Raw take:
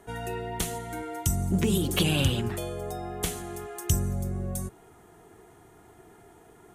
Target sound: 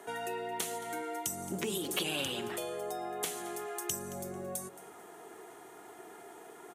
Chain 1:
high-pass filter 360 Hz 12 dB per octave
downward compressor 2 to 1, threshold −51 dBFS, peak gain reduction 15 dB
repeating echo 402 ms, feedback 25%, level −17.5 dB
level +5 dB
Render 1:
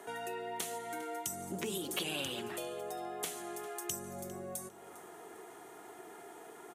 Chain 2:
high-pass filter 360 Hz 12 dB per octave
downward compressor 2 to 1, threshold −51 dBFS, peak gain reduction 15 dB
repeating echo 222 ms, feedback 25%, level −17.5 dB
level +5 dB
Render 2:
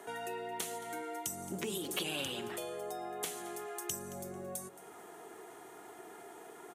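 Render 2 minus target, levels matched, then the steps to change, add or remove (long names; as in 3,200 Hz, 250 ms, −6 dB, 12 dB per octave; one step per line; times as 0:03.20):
downward compressor: peak gain reduction +3 dB
change: downward compressor 2 to 1, threshold −45 dBFS, peak gain reduction 12 dB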